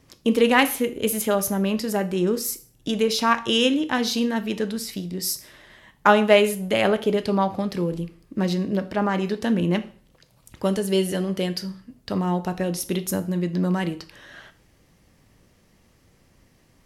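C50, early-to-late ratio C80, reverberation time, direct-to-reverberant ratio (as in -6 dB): 16.0 dB, 20.5 dB, 0.45 s, 10.0 dB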